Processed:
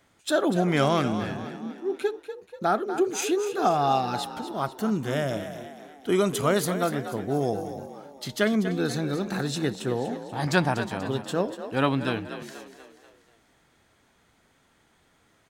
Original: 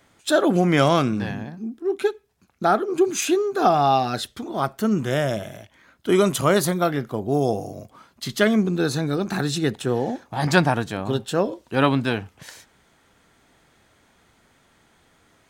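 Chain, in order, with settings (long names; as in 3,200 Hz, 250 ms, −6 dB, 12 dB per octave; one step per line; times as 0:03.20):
echo with shifted repeats 242 ms, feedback 48%, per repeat +45 Hz, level −11 dB
level −5 dB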